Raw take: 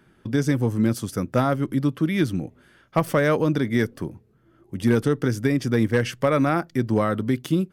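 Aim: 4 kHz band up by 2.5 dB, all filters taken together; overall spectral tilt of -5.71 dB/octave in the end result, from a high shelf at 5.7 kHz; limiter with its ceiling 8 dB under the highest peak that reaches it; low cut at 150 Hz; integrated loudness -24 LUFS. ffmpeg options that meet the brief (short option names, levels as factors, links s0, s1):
-af "highpass=150,equalizer=f=4000:t=o:g=5.5,highshelf=f=5700:g=-6.5,volume=1.26,alimiter=limit=0.251:level=0:latency=1"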